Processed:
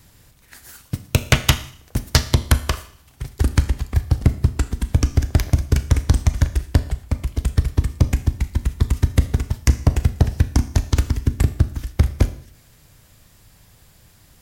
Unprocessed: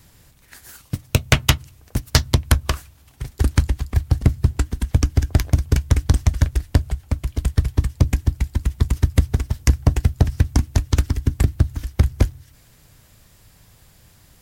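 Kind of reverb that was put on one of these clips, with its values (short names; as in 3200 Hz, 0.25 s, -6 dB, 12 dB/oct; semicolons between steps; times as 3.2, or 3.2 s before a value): Schroeder reverb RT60 0.59 s, combs from 26 ms, DRR 11.5 dB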